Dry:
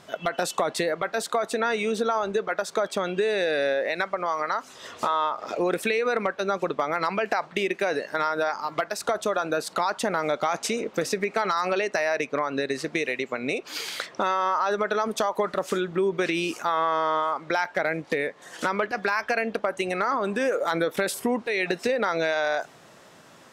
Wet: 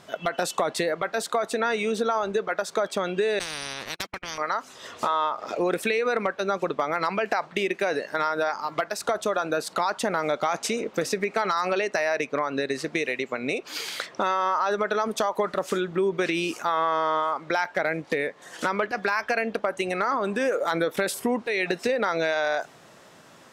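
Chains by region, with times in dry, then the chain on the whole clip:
3.39–4.38 s: gate -28 dBFS, range -49 dB + spectrum-flattening compressor 10:1
whole clip: none

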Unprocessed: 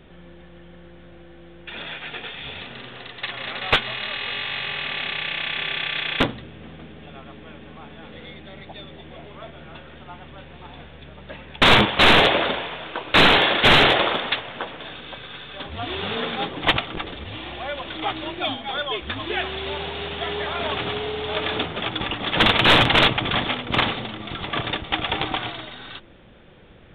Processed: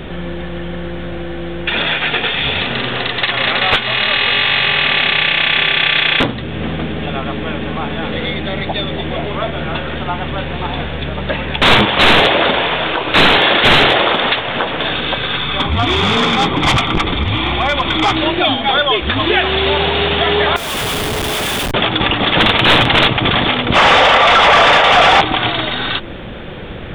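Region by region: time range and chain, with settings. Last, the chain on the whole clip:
15.37–18.17 s: comb 0.9 ms, depth 43% + overload inside the chain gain 23.5 dB + distance through air 72 m
20.56–21.74 s: pre-emphasis filter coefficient 0.97 + Schmitt trigger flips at -40.5 dBFS
23.75–25.21 s: steep high-pass 460 Hz 72 dB/octave + overdrive pedal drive 35 dB, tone 1.8 kHz, clips at -5.5 dBFS + distance through air 92 m
whole clip: compression 2:1, threshold -37 dBFS; loudness maximiser +23 dB; trim -2 dB

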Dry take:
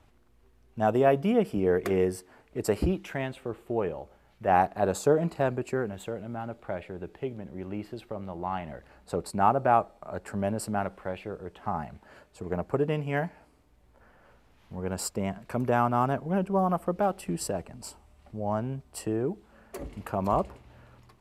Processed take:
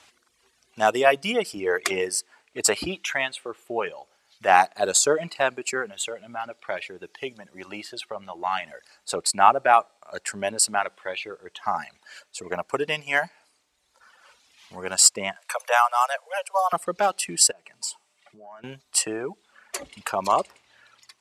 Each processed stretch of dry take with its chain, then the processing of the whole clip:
15.36–16.73 s: steep high-pass 490 Hz 96 dB/octave + peaking EQ 10 kHz +6 dB 1.1 oct
17.51–18.64 s: comb of notches 260 Hz + compression 16:1, threshold -41 dBFS + high-pass 130 Hz 24 dB/octave
whole clip: frequency weighting ITU-R 468; reverb removal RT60 1.9 s; trim +8 dB

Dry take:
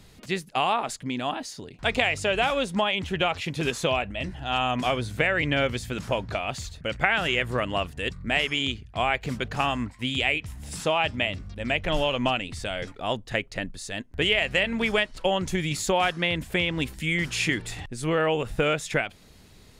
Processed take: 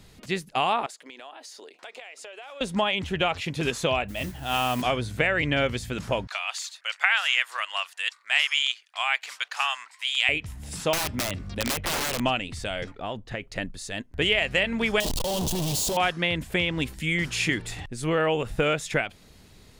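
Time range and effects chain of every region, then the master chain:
0.86–2.61 s: high-pass 400 Hz 24 dB/octave + compression, threshold -40 dBFS
4.08–4.82 s: high-pass 55 Hz + modulation noise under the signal 15 dB
6.27–10.29 s: high-pass 940 Hz 24 dB/octave + peaking EQ 5.9 kHz +5 dB 2.6 oct
10.93–12.20 s: dynamic bell 5.8 kHz, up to -6 dB, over -43 dBFS, Q 1.1 + integer overflow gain 22 dB + three bands compressed up and down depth 100%
12.84–13.42 s: treble shelf 5.6 kHz -12 dB + compression 5:1, threshold -27 dBFS
15.00–15.97 s: one-bit comparator + high-order bell 1.7 kHz -15 dB 1.2 oct
whole clip: none

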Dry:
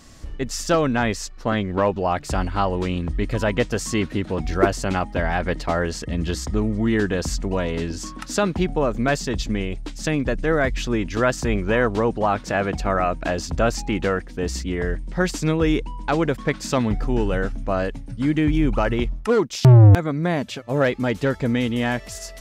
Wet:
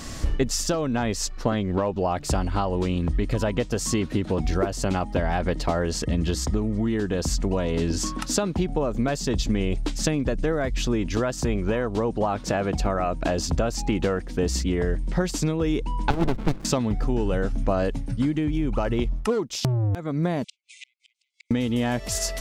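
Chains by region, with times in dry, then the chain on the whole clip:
16.10–16.65 s: resonant high shelf 2.7 kHz -8.5 dB, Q 3 + sliding maximum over 65 samples
20.44–21.51 s: brick-wall FIR band-pass 2–9.8 kHz + inverted gate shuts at -31 dBFS, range -42 dB
whole clip: compression 10:1, threshold -23 dBFS; dynamic bell 1.8 kHz, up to -6 dB, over -44 dBFS, Q 1.1; gain riding 0.5 s; trim +4 dB

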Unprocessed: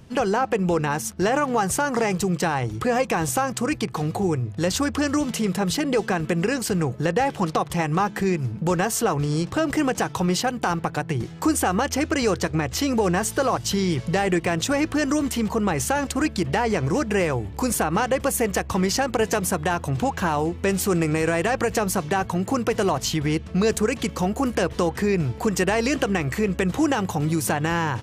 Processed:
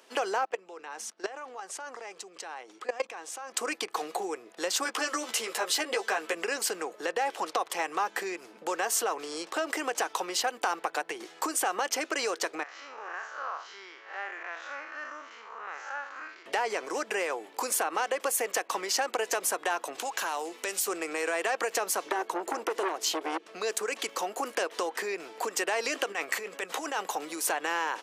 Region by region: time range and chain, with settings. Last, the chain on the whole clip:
0.45–3.54 s: low-pass 7.6 kHz + level held to a coarse grid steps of 19 dB
4.84–6.35 s: bass shelf 230 Hz -11 dB + doubling 13 ms -3.5 dB
12.63–16.46 s: spectral blur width 138 ms + band-pass filter 1.4 kHz, Q 2.4 + careless resampling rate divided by 3×, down none, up filtered
19.98–20.88 s: treble shelf 3.2 kHz +10 dB + compression 4:1, threshold -26 dBFS
22.06–23.47 s: peaking EQ 350 Hz +13 dB 0.57 oct + transformer saturation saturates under 960 Hz
26.12–27.05 s: peaking EQ 340 Hz -7 dB 0.29 oct + compressor with a negative ratio -27 dBFS
whole clip: compression, threshold -22 dBFS; Bessel high-pass 570 Hz, order 6

